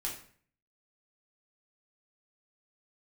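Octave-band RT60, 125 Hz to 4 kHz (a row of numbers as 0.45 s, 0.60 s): 0.70 s, 0.60 s, 0.50 s, 0.50 s, 0.50 s, 0.40 s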